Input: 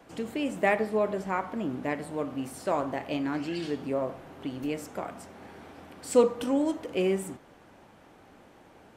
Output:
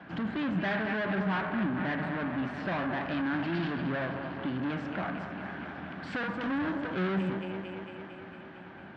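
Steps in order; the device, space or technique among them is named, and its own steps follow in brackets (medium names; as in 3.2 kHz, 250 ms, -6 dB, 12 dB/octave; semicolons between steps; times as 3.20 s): thinning echo 226 ms, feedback 74%, high-pass 170 Hz, level -13 dB; guitar amplifier (valve stage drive 37 dB, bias 0.55; tone controls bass +3 dB, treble -2 dB; cabinet simulation 85–3700 Hz, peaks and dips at 180 Hz +8 dB, 470 Hz -10 dB, 1.6 kHz +10 dB); trim +7 dB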